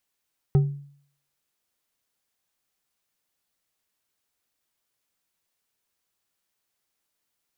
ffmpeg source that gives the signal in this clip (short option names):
-f lavfi -i "aevalsrc='0.237*pow(10,-3*t/0.57)*sin(2*PI*142*t)+0.0708*pow(10,-3*t/0.28)*sin(2*PI*391.5*t)+0.0211*pow(10,-3*t/0.175)*sin(2*PI*767.4*t)+0.00631*pow(10,-3*t/0.123)*sin(2*PI*1268.5*t)+0.00188*pow(10,-3*t/0.093)*sin(2*PI*1894.3*t)':d=0.89:s=44100"